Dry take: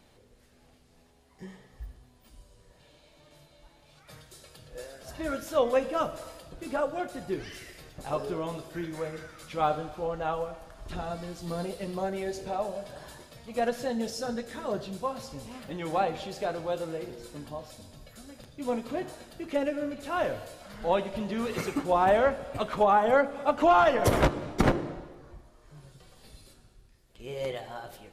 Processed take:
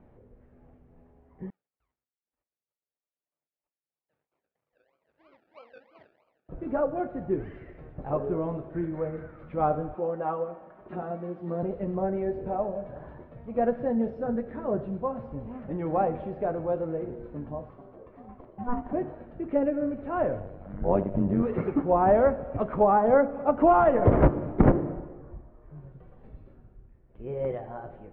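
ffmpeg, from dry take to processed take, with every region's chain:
ffmpeg -i in.wav -filter_complex "[0:a]asettb=1/sr,asplit=3[link_01][link_02][link_03];[link_01]atrim=end=1.504[link_04];[link_02]atrim=start=1.5:end=6.49,asetpts=PTS-STARTPTS,afade=type=in:duration=0.004:curve=qsin,afade=type=out:start_time=4.986:duration=0.004:curve=qsin,agate=range=-33dB:threshold=-48dB:ratio=3:release=100:detection=peak,acrusher=samples=34:mix=1:aa=0.000001:lfo=1:lforange=20.4:lforate=3.1,bandpass=frequency=4800:width_type=q:width=3.4[link_05];[link_03]atrim=start=6.486[link_06];[link_04][link_05]acrossfade=duration=0.004:curve1=hsin:curve2=qsin[link_07];[link_07][link_06]acrossfade=duration=0.004:curve1=qsin:curve2=hsin,asettb=1/sr,asplit=3[link_08][link_09][link_10];[link_08]atrim=end=9.954[link_11];[link_09]atrim=start=9.95:end=11.63,asetpts=PTS-STARTPTS,afade=type=in:duration=0.004:curve=qsin,afade=type=out:start_time=1.676:duration=0.004:curve=qsin,highpass=260,aecho=1:1:5.4:0.56,atrim=end_sample=74088[link_12];[link_10]atrim=start=11.626[link_13];[link_11][link_12]acrossfade=duration=0.004:curve1=hsin:curve2=qsin[link_14];[link_14][link_13]acrossfade=duration=0.004:curve1=qsin:curve2=hsin,asettb=1/sr,asplit=3[link_15][link_16][link_17];[link_15]atrim=end=17.694[link_18];[link_16]atrim=start=17.69:end=18.93,asetpts=PTS-STARTPTS,afade=type=in:duration=0.004:curve=qsin,afade=type=out:start_time=1.236:duration=0.004:curve=qsin,equalizer=frequency=890:width=0.96:gain=3,aeval=exprs='val(0)*sin(2*PI*490*n/s)':channel_layout=same[link_19];[link_17]atrim=start=18.926[link_20];[link_18][link_19]acrossfade=duration=0.004:curve1=hsin:curve2=qsin[link_21];[link_21][link_20]acrossfade=duration=0.004:curve1=qsin:curve2=hsin,asettb=1/sr,asplit=3[link_22][link_23][link_24];[link_22]atrim=end=20.404[link_25];[link_23]atrim=start=20.4:end=21.43,asetpts=PTS-STARTPTS,afade=type=in:duration=0.004:curve=qsin,afade=type=out:start_time=1.026:duration=0.004:curve=qsin,lowshelf=frequency=300:gain=10,tremolo=f=97:d=0.857[link_26];[link_24]atrim=start=21.426[link_27];[link_25][link_26]acrossfade=duration=0.004:curve1=hsin:curve2=qsin[link_28];[link_28][link_27]acrossfade=duration=0.004:curve1=qsin:curve2=hsin,lowpass=frequency=2300:width=0.5412,lowpass=frequency=2300:width=1.3066,tiltshelf=frequency=1400:gain=10,volume=-4dB" out.wav

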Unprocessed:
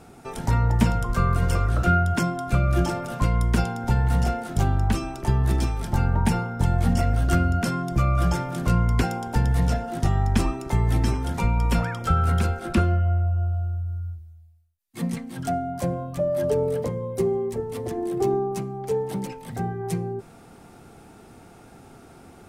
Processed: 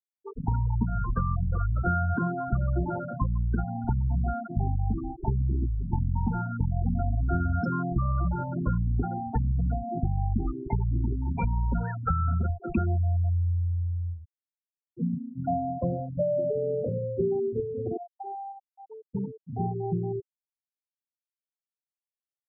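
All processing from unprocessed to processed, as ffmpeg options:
ffmpeg -i in.wav -filter_complex "[0:a]asettb=1/sr,asplit=3[link_01][link_02][link_03];[link_01]atrim=end=16.404[link_04];[link_02]atrim=start=16.4:end=16.89,asetpts=PTS-STARTPTS,afade=type=in:duration=0.004:curve=qsin,afade=type=out:start_time=0.486:duration=0.004:curve=qsin,highpass=95,acompressor=threshold=-24dB:ratio=6:attack=3.2:release=140:knee=1:detection=peak,aeval=exprs='val(0)+0.0158*sin(2*PI*590*n/s)':channel_layout=same[link_05];[link_03]atrim=start=16.886[link_06];[link_04][link_05]acrossfade=duration=0.004:curve1=hsin:curve2=qsin[link_07];[link_07][link_06]acrossfade=duration=0.004:curve1=qsin:curve2=hsin,asettb=1/sr,asplit=3[link_08][link_09][link_10];[link_08]atrim=end=17.974[link_11];[link_09]atrim=start=17.97:end=19.15,asetpts=PTS-STARTPTS,afade=type=in:duration=0.004:curve=qsin,afade=type=out:start_time=1.176:duration=0.004:curve=qsin,highpass=frequency=750:width=0.5412,highpass=frequency=750:width=1.3066,asplit=2[link_12][link_13];[link_13]adelay=30,volume=-5dB[link_14];[link_12][link_14]amix=inputs=2:normalize=0,atrim=end_sample=52038[link_15];[link_10]atrim=start=19.146[link_16];[link_11][link_15]acrossfade=duration=0.004:curve1=hsin:curve2=qsin[link_17];[link_17][link_16]acrossfade=duration=0.004:curve1=qsin:curve2=hsin,bandreject=frequency=189.8:width_type=h:width=4,bandreject=frequency=379.6:width_type=h:width=4,bandreject=frequency=569.4:width_type=h:width=4,acompressor=threshold=-22dB:ratio=5,afftfilt=real='re*gte(hypot(re,im),0.1)':imag='im*gte(hypot(re,im),0.1)':win_size=1024:overlap=0.75" out.wav

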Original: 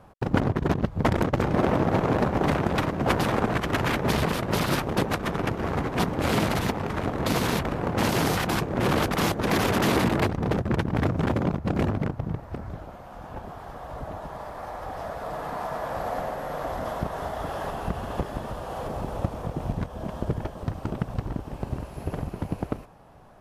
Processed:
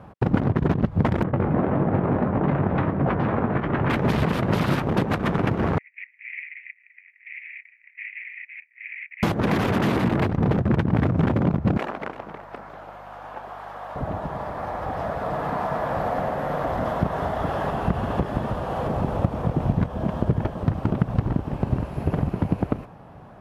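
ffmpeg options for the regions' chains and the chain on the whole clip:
ffmpeg -i in.wav -filter_complex "[0:a]asettb=1/sr,asplit=3[link_01][link_02][link_03];[link_01]atrim=end=1.234[link_04];[link_02]atrim=start=1.23:end=3.9,asetpts=PTS-STARTPTS,afade=type=in:duration=0.004:curve=qsin,afade=type=out:start_time=2.666:duration=0.004:curve=qsin,lowpass=1900,asplit=2[link_05][link_06];[link_06]adelay=21,volume=-8.5dB[link_07];[link_05][link_07]amix=inputs=2:normalize=0,atrim=end_sample=117747,flanger=delay=4.6:depth=9.3:regen=-53:speed=1.6:shape=triangular[link_08];[link_03]atrim=start=3.896[link_09];[link_04][link_08]acrossfade=duration=0.004:curve1=hsin:curve2=qsin[link_10];[link_10][link_09]acrossfade=duration=0.004:curve1=qsin:curve2=hsin,asettb=1/sr,asplit=3[link_11][link_12][link_13];[link_11]atrim=end=5.784[link_14];[link_12]atrim=start=5.78:end=9.23,asetpts=PTS-STARTPTS,afade=type=in:duration=0.004:curve=qsin,afade=type=out:start_time=3.446:duration=0.004:curve=qsin,agate=range=-33dB:threshold=-21dB:ratio=3:release=100:detection=peak,asuperpass=centerf=2200:order=8:qfactor=3.4[link_15];[link_13]atrim=start=9.226[link_16];[link_14][link_15]acrossfade=duration=0.004:curve1=hsin:curve2=qsin[link_17];[link_17][link_16]acrossfade=duration=0.004:curve1=qsin:curve2=hsin,asettb=1/sr,asplit=3[link_18][link_19][link_20];[link_18]atrim=end=11.774[link_21];[link_19]atrim=start=11.77:end=13.96,asetpts=PTS-STARTPTS,afade=type=in:duration=0.004:curve=qsin,afade=type=out:start_time=2.186:duration=0.004:curve=qsin,highpass=670,aecho=1:1:338:0.168,atrim=end_sample=96579,aeval=exprs='val(0)+0.00141*(sin(2*PI*50*n/s)+sin(2*PI*2*50*n/s)/2+sin(2*PI*3*50*n/s)/3+sin(2*PI*4*50*n/s)/4+sin(2*PI*5*50*n/s)/5)':channel_layout=same[link_22];[link_20]atrim=start=13.956[link_23];[link_21][link_22]acrossfade=duration=0.004:curve1=hsin:curve2=qsin[link_24];[link_24][link_23]acrossfade=duration=0.004:curve1=qsin:curve2=hsin,highpass=frequency=170:poles=1,acompressor=threshold=-27dB:ratio=6,bass=frequency=250:gain=9,treble=frequency=4000:gain=-11,volume=6dB" out.wav

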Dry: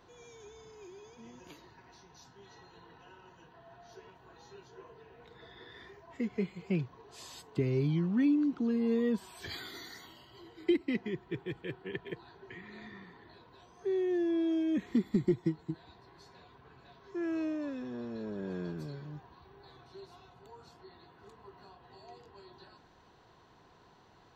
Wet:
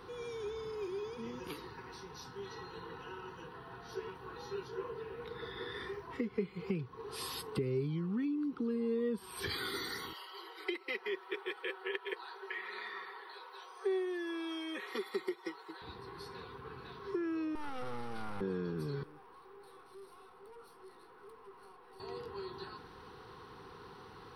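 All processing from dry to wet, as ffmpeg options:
ffmpeg -i in.wav -filter_complex "[0:a]asettb=1/sr,asplit=3[link_01][link_02][link_03];[link_01]atrim=end=10.134[link_04];[link_02]atrim=start=10.13:end=15.82,asetpts=PTS-STARTPTS,afade=type=in:duration=0.004:curve=qsin,afade=type=out:start_time=5.686:duration=0.004:curve=qsin,highpass=frequency=530:width=0.5412,highpass=frequency=530:width=1.3066,aecho=1:1:5.3:0.46,atrim=end_sample=250929[link_05];[link_03]atrim=start=15.816[link_06];[link_04][link_05]acrossfade=duration=0.004:curve1=hsin:curve2=qsin[link_07];[link_07][link_06]acrossfade=duration=0.004:curve1=qsin:curve2=hsin,asettb=1/sr,asplit=3[link_08][link_09][link_10];[link_08]atrim=end=17.554[link_11];[link_09]atrim=start=17.55:end=18.41,asetpts=PTS-STARTPTS,afade=type=in:duration=0.004:curve=qsin,afade=type=out:start_time=0.856:duration=0.004:curve=qsin,highpass=290,aeval=exprs='abs(val(0))':channel_layout=same[link_12];[link_10]atrim=start=18.406[link_13];[link_11][link_12]acrossfade=duration=0.004:curve1=hsin:curve2=qsin[link_14];[link_14][link_13]acrossfade=duration=0.004:curve1=qsin:curve2=hsin,asettb=1/sr,asplit=3[link_15][link_16][link_17];[link_15]atrim=end=19.034[link_18];[link_16]atrim=start=19.03:end=22,asetpts=PTS-STARTPTS,afade=type=in:duration=0.004:curve=qsin,afade=type=out:start_time=2.966:duration=0.004:curve=qsin,highpass=420,aeval=exprs='(tanh(1120*val(0)+0.45)-tanh(0.45))/1120':channel_layout=same,equalizer=frequency=4400:width_type=o:width=2.7:gain=-8.5[link_19];[link_17]atrim=start=21.996[link_20];[link_18][link_19]acrossfade=duration=0.004:curve1=hsin:curve2=qsin[link_21];[link_21][link_20]acrossfade=duration=0.004:curve1=qsin:curve2=hsin,acompressor=threshold=-43dB:ratio=5,superequalizer=7b=1.78:8b=0.282:10b=1.78:15b=0.251:16b=2.82,volume=7.5dB" out.wav

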